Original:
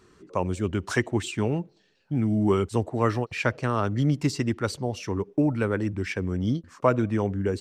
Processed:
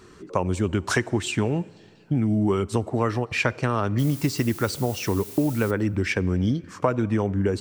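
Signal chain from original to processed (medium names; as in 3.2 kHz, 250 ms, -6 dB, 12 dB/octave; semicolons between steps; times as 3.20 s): compression 4:1, threshold -28 dBFS, peak gain reduction 11.5 dB; 3.98–5.70 s: added noise blue -49 dBFS; on a send: reverberation RT60 2.6 s, pre-delay 20 ms, DRR 22 dB; on the sum: trim +8 dB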